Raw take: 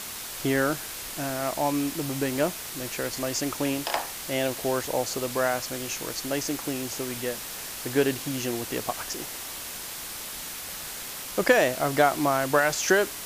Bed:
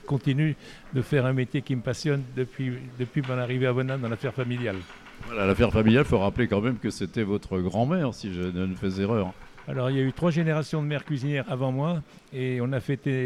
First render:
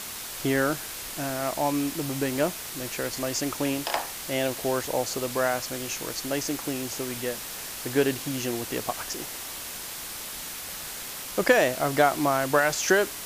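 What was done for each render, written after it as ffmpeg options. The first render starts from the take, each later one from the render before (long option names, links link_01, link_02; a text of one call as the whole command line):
ffmpeg -i in.wav -af anull out.wav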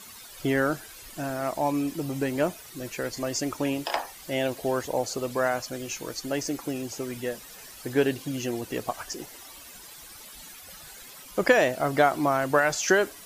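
ffmpeg -i in.wav -af "afftdn=noise_reduction=13:noise_floor=-37" out.wav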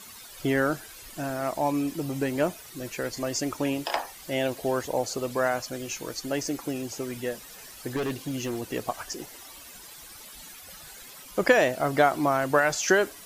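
ffmpeg -i in.wav -filter_complex "[0:a]asettb=1/sr,asplit=3[link_01][link_02][link_03];[link_01]atrim=end=7.964[link_04];[link_02]atrim=start=7.96:end=8.59,asetpts=PTS-STARTPTS,afade=type=in:duration=0.004:curve=qsin,afade=type=out:start_time=0.626:duration=0.004:curve=qsin,asoftclip=type=hard:threshold=-26dB[link_05];[link_03]atrim=start=8.586[link_06];[link_04][link_05]acrossfade=duration=0.004:curve1=hsin:curve2=qsin[link_07];[link_07][link_06]acrossfade=duration=0.004:curve1=qsin:curve2=hsin" out.wav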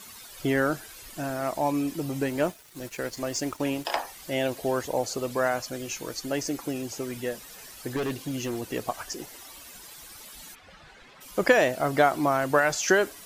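ffmpeg -i in.wav -filter_complex "[0:a]asettb=1/sr,asplit=3[link_01][link_02][link_03];[link_01]atrim=end=2.284[link_04];[link_02]atrim=start=2.28:end=3.85,asetpts=PTS-STARTPTS,afade=type=in:duration=0.004:curve=qsin,afade=type=out:start_time=1.566:duration=0.004:curve=qsin,aeval=exprs='sgn(val(0))*max(abs(val(0))-0.00473,0)':channel_layout=same[link_05];[link_03]atrim=start=3.846[link_06];[link_04][link_05]acrossfade=duration=0.004:curve1=hsin:curve2=qsin[link_07];[link_07][link_06]acrossfade=duration=0.004:curve1=qsin:curve2=hsin,asplit=3[link_08][link_09][link_10];[link_08]afade=type=out:start_time=10.54:duration=0.02[link_11];[link_09]lowpass=2800,afade=type=in:start_time=10.54:duration=0.02,afade=type=out:start_time=11.2:duration=0.02[link_12];[link_10]afade=type=in:start_time=11.2:duration=0.02[link_13];[link_11][link_12][link_13]amix=inputs=3:normalize=0" out.wav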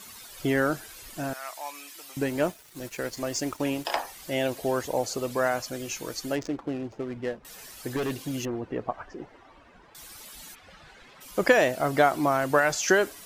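ffmpeg -i in.wav -filter_complex "[0:a]asettb=1/sr,asplit=3[link_01][link_02][link_03];[link_01]atrim=end=1.334[link_04];[link_02]atrim=start=1.33:end=2.17,asetpts=PTS-STARTPTS,afade=type=in:duration=0.004:curve=qsin,afade=type=out:start_time=0.836:duration=0.004:curve=qsin,highpass=1400[link_05];[link_03]atrim=start=2.166[link_06];[link_04][link_05]acrossfade=duration=0.004:curve1=hsin:curve2=qsin[link_07];[link_07][link_06]acrossfade=duration=0.004:curve1=qsin:curve2=hsin,asettb=1/sr,asplit=3[link_08][link_09][link_10];[link_08]atrim=end=6.354[link_11];[link_09]atrim=start=6.35:end=7.45,asetpts=PTS-STARTPTS,afade=type=in:duration=0.004:curve=qsin,afade=type=out:start_time=1.096:duration=0.004:curve=qsin,adynamicsmooth=sensitivity=5.5:basefreq=780[link_12];[link_10]atrim=start=7.446[link_13];[link_11][link_12]acrossfade=duration=0.004:curve1=hsin:curve2=qsin[link_14];[link_14][link_13]acrossfade=duration=0.004:curve1=qsin:curve2=hsin,asettb=1/sr,asplit=3[link_15][link_16][link_17];[link_15]atrim=end=8.454[link_18];[link_16]atrim=start=8.45:end=9.95,asetpts=PTS-STARTPTS,afade=type=in:duration=0.004:curve=qsin,afade=type=out:start_time=1.496:duration=0.004:curve=qsin,lowpass=1500[link_19];[link_17]atrim=start=9.946[link_20];[link_18][link_19]acrossfade=duration=0.004:curve1=hsin:curve2=qsin[link_21];[link_21][link_20]acrossfade=duration=0.004:curve1=qsin:curve2=hsin" out.wav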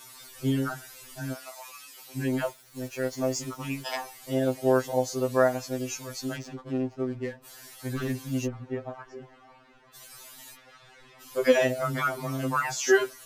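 ffmpeg -i in.wav -af "afftfilt=real='re*2.45*eq(mod(b,6),0)':imag='im*2.45*eq(mod(b,6),0)':win_size=2048:overlap=0.75" out.wav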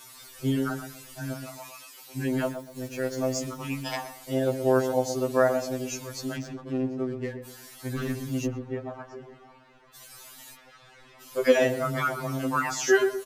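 ffmpeg -i in.wav -filter_complex "[0:a]asplit=2[link_01][link_02];[link_02]adelay=123,lowpass=frequency=840:poles=1,volume=-6.5dB,asplit=2[link_03][link_04];[link_04]adelay=123,lowpass=frequency=840:poles=1,volume=0.36,asplit=2[link_05][link_06];[link_06]adelay=123,lowpass=frequency=840:poles=1,volume=0.36,asplit=2[link_07][link_08];[link_08]adelay=123,lowpass=frequency=840:poles=1,volume=0.36[link_09];[link_01][link_03][link_05][link_07][link_09]amix=inputs=5:normalize=0" out.wav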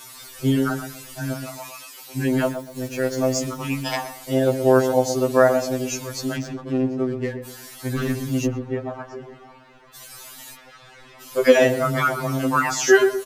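ffmpeg -i in.wav -af "volume=6.5dB,alimiter=limit=-2dB:level=0:latency=1" out.wav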